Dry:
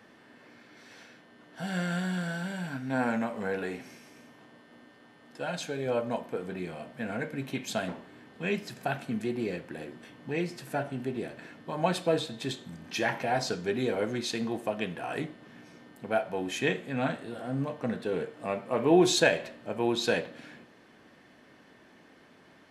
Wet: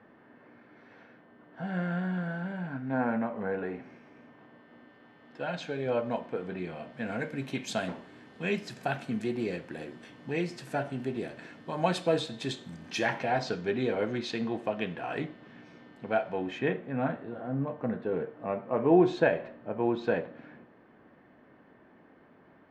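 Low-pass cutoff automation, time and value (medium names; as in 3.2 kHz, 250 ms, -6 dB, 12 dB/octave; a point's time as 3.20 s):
3.77 s 1.6 kHz
5.72 s 3.7 kHz
6.77 s 3.7 kHz
7.27 s 8.4 kHz
13.00 s 8.4 kHz
13.41 s 3.8 kHz
16.27 s 3.8 kHz
16.74 s 1.5 kHz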